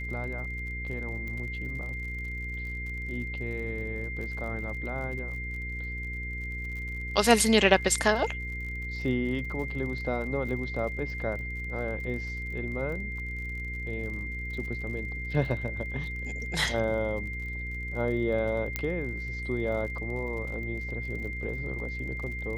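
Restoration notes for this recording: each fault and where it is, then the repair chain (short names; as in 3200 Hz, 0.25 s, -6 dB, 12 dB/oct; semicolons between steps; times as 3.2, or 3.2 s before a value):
crackle 47/s -39 dBFS
hum 60 Hz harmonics 8 -37 dBFS
tone 2100 Hz -36 dBFS
1.28 pop -27 dBFS
18.76 pop -13 dBFS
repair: de-click; de-hum 60 Hz, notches 8; notch 2100 Hz, Q 30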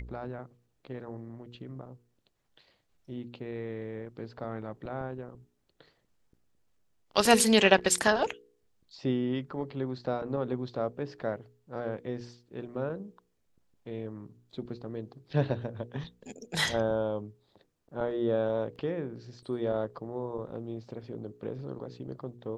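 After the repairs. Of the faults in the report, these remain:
18.76 pop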